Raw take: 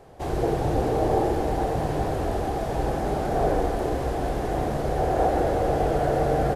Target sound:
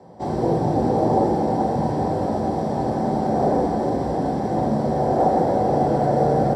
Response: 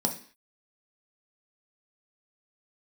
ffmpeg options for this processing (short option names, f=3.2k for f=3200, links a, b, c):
-filter_complex "[0:a]acrossover=split=220[a][b];[b]adynamicsmooth=sensitivity=6:basefreq=8k[c];[a][c]amix=inputs=2:normalize=0[d];[1:a]atrim=start_sample=2205[e];[d][e]afir=irnorm=-1:irlink=0,volume=-7dB"